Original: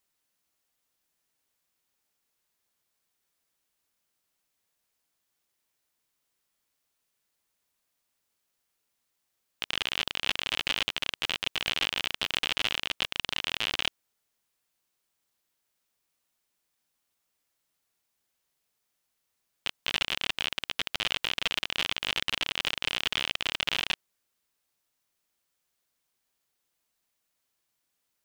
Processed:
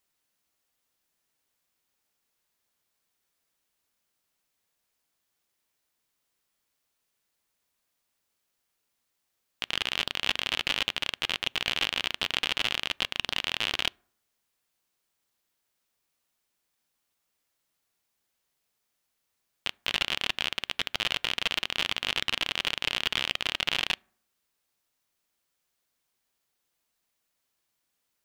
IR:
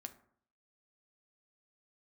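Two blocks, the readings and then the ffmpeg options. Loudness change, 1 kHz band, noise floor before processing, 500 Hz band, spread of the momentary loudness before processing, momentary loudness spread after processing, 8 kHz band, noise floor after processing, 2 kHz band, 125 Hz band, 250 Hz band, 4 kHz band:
+1.0 dB, +1.0 dB, −80 dBFS, +1.0 dB, 4 LU, 4 LU, 0.0 dB, −80 dBFS, +1.0 dB, +1.0 dB, +1.0 dB, +1.0 dB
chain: -filter_complex "[0:a]asplit=2[link_01][link_02];[1:a]atrim=start_sample=2205,lowpass=6900[link_03];[link_02][link_03]afir=irnorm=-1:irlink=0,volume=-11.5dB[link_04];[link_01][link_04]amix=inputs=2:normalize=0"

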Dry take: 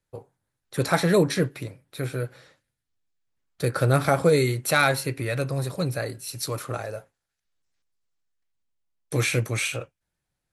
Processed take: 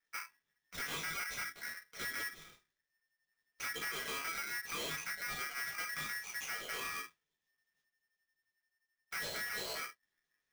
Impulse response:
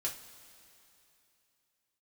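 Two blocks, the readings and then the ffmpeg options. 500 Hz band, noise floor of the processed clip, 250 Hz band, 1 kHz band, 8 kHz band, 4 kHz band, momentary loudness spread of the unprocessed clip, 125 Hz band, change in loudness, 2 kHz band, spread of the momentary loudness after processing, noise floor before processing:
−26.0 dB, below −85 dBFS, −27.5 dB, −15.0 dB, −10.0 dB, −8.5 dB, 14 LU, −33.5 dB, −15.0 dB, −9.0 dB, 8 LU, −83 dBFS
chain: -filter_complex "[0:a]acrossover=split=1400[link_01][link_02];[link_01]aeval=exprs='val(0)*(1-0.7/2+0.7/2*cos(2*PI*5.7*n/s))':channel_layout=same[link_03];[link_02]aeval=exprs='val(0)*(1-0.7/2-0.7/2*cos(2*PI*5.7*n/s))':channel_layout=same[link_04];[link_03][link_04]amix=inputs=2:normalize=0,flanger=delay=4.6:depth=7.9:regen=-29:speed=0.36:shape=sinusoidal[link_05];[1:a]atrim=start_sample=2205,atrim=end_sample=3528[link_06];[link_05][link_06]afir=irnorm=-1:irlink=0,acompressor=threshold=-38dB:ratio=6,aresample=11025,asoftclip=type=hard:threshold=-40dB,aresample=44100,aeval=exprs='val(0)*sgn(sin(2*PI*1800*n/s))':channel_layout=same,volume=3dB"

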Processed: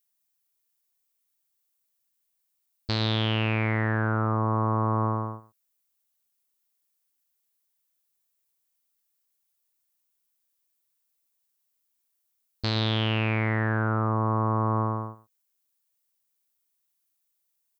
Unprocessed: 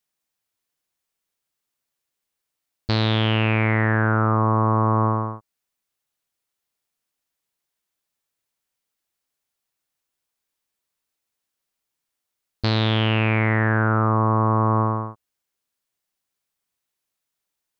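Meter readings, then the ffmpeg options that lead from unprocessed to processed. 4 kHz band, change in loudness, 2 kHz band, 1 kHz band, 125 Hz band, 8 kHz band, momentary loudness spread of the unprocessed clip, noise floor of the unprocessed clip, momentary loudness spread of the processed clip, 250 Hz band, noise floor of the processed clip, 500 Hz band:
−3.0 dB, −6.0 dB, −6.5 dB, −6.5 dB, −6.0 dB, can't be measured, 7 LU, −82 dBFS, 8 LU, −6.0 dB, −77 dBFS, −6.0 dB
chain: -af "aemphasis=mode=production:type=50kf,aecho=1:1:118:0.158,volume=-7dB"

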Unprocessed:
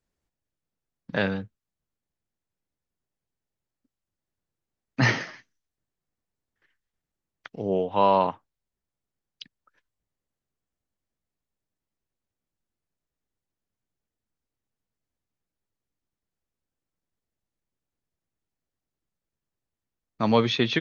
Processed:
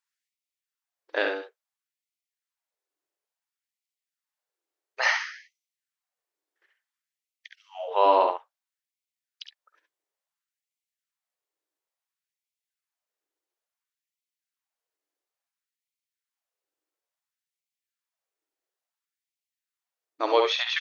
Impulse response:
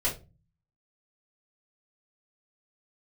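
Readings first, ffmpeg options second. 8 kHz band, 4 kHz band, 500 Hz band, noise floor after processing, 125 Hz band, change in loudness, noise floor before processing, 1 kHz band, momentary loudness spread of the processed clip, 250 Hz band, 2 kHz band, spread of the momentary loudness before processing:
can't be measured, +1.0 dB, 0.0 dB, below −85 dBFS, below −40 dB, 0.0 dB, below −85 dBFS, +1.0 dB, 17 LU, −13.0 dB, +1.0 dB, 13 LU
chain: -af "aecho=1:1:52|68:0.211|0.501,afftfilt=real='re*gte(b*sr/1024,270*pow(2000/270,0.5+0.5*sin(2*PI*0.58*pts/sr)))':imag='im*gte(b*sr/1024,270*pow(2000/270,0.5+0.5*sin(2*PI*0.58*pts/sr)))':win_size=1024:overlap=0.75"

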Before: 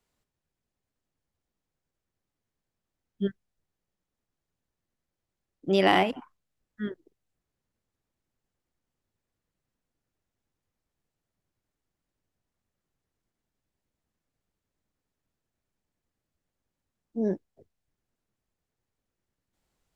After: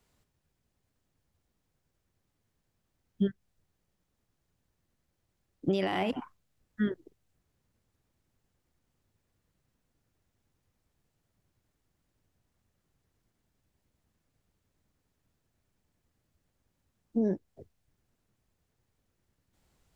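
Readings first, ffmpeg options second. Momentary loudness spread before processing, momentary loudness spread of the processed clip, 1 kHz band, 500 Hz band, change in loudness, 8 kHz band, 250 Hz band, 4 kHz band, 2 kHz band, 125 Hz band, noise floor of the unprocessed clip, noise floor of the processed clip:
18 LU, 9 LU, −10.0 dB, −5.5 dB, −5.0 dB, can't be measured, −0.5 dB, −9.5 dB, −9.0 dB, −0.5 dB, below −85 dBFS, −80 dBFS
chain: -af "alimiter=limit=-16.5dB:level=0:latency=1:release=102,acompressor=threshold=-32dB:ratio=6,equalizer=frequency=86:width=0.6:gain=5.5,volume=5.5dB"

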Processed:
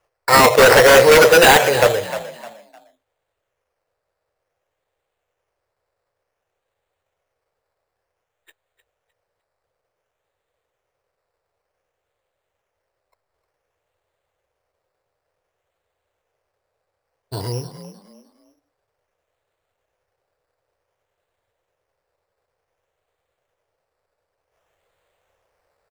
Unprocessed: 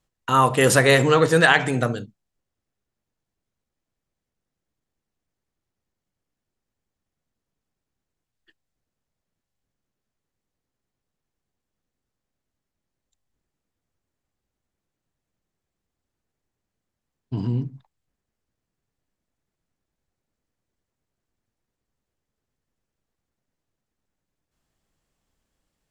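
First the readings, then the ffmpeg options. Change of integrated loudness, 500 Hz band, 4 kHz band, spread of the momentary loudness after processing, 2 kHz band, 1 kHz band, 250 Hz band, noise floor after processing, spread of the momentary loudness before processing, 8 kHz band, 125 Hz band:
+7.5 dB, +9.0 dB, +8.5 dB, 20 LU, +6.0 dB, +7.0 dB, 0.0 dB, −79 dBFS, 15 LU, can't be measured, −3.5 dB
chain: -filter_complex "[0:a]equalizer=frequency=90:width_type=o:width=0.9:gain=9,acrusher=samples=11:mix=1:aa=0.000001:lfo=1:lforange=6.6:lforate=0.55,lowshelf=frequency=350:width_type=q:width=3:gain=-13,aeval=exprs='0.251*(abs(mod(val(0)/0.251+3,4)-2)-1)':channel_layout=same,asplit=4[link_01][link_02][link_03][link_04];[link_02]adelay=305,afreqshift=52,volume=-13dB[link_05];[link_03]adelay=610,afreqshift=104,volume=-23.2dB[link_06];[link_04]adelay=915,afreqshift=156,volume=-33.3dB[link_07];[link_01][link_05][link_06][link_07]amix=inputs=4:normalize=0,volume=8dB"

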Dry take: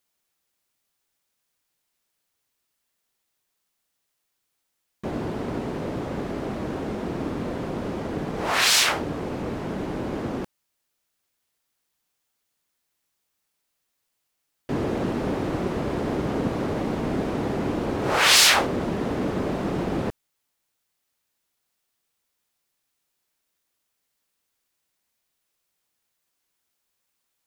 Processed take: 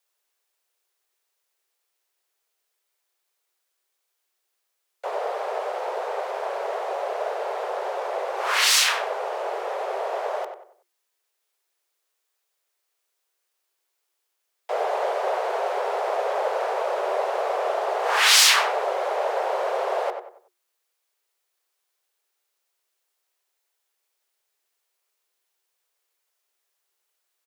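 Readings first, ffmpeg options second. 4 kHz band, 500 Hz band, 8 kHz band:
+0.5 dB, +3.5 dB, +1.0 dB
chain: -filter_complex "[0:a]afreqshift=350,asplit=2[link_01][link_02];[link_02]adelay=94,lowpass=frequency=2000:poles=1,volume=-6.5dB,asplit=2[link_03][link_04];[link_04]adelay=94,lowpass=frequency=2000:poles=1,volume=0.37,asplit=2[link_05][link_06];[link_06]adelay=94,lowpass=frequency=2000:poles=1,volume=0.37,asplit=2[link_07][link_08];[link_08]adelay=94,lowpass=frequency=2000:poles=1,volume=0.37[link_09];[link_01][link_03][link_05][link_07][link_09]amix=inputs=5:normalize=0"

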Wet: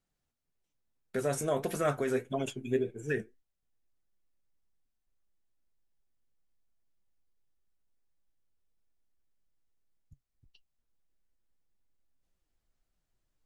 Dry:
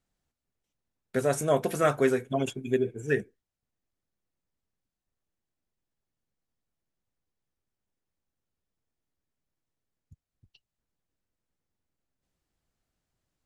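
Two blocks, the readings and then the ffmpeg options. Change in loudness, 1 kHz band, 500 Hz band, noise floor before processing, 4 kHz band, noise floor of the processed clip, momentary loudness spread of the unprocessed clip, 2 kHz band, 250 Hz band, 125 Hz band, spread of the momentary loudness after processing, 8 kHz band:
−5.5 dB, −6.0 dB, −5.5 dB, below −85 dBFS, −4.0 dB, −83 dBFS, 6 LU, −5.5 dB, −5.0 dB, −4.5 dB, 5 LU, −3.0 dB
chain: -af "asubboost=boost=3.5:cutoff=53,alimiter=limit=-17.5dB:level=0:latency=1:release=38,flanger=delay=4.8:depth=4.5:regen=68:speed=1.7:shape=triangular,volume=1.5dB"

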